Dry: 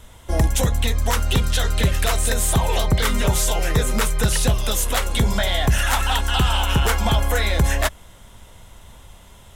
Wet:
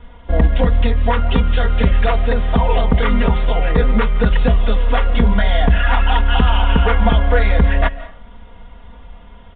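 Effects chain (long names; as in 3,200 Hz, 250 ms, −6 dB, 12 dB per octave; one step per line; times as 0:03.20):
high-frequency loss of the air 400 metres
comb filter 4.2 ms, depth 85%
convolution reverb RT60 0.45 s, pre-delay 120 ms, DRR 15.5 dB
level +3.5 dB
mu-law 64 kbit/s 8,000 Hz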